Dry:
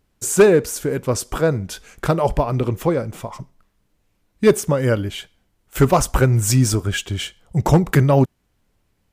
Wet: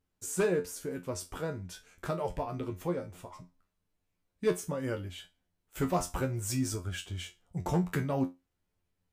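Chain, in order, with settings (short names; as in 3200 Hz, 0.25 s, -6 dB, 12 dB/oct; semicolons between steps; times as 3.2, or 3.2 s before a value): resonator 89 Hz, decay 0.21 s, harmonics all, mix 90%; gain -8 dB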